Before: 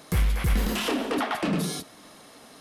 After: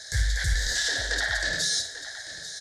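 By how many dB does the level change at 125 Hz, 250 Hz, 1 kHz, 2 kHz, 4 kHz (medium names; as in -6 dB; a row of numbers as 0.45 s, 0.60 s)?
-3.0 dB, -20.0 dB, -10.5 dB, +8.0 dB, +7.0 dB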